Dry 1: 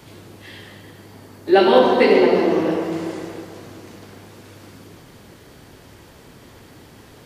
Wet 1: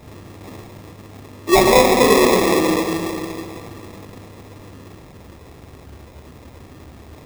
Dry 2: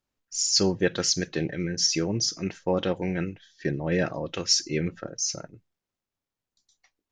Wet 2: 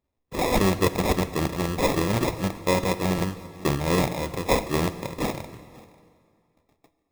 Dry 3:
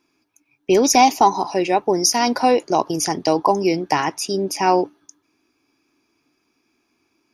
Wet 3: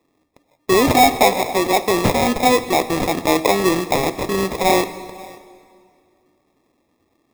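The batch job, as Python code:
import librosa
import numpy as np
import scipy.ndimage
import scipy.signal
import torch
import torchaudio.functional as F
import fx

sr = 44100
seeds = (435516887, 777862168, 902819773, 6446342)

p1 = fx.rattle_buzz(x, sr, strikes_db=-25.0, level_db=-15.0)
p2 = fx.peak_eq(p1, sr, hz=73.0, db=13.5, octaves=0.37)
p3 = 10.0 ** (-16.0 / 20.0) * np.tanh(p2 / 10.0 ** (-16.0 / 20.0))
p4 = p2 + (p3 * 10.0 ** (-6.0 / 20.0))
p5 = fx.sample_hold(p4, sr, seeds[0], rate_hz=1500.0, jitter_pct=0)
p6 = p5 + fx.echo_single(p5, sr, ms=538, db=-23.0, dry=0)
p7 = fx.rev_plate(p6, sr, seeds[1], rt60_s=2.3, hf_ratio=0.85, predelay_ms=0, drr_db=12.5)
y = p7 * 10.0 ** (-1.5 / 20.0)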